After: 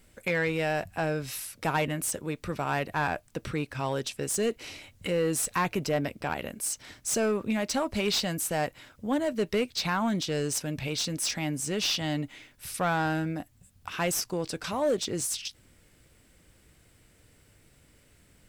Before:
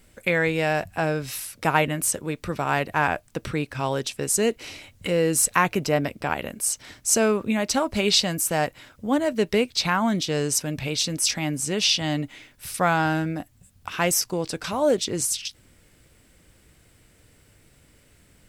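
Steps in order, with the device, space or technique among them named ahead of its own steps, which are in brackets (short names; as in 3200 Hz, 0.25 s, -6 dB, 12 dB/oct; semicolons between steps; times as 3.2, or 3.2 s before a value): saturation between pre-emphasis and de-emphasis (high shelf 3700 Hz +8 dB; soft clip -15 dBFS, distortion -11 dB; high shelf 3700 Hz -8 dB); gain -3.5 dB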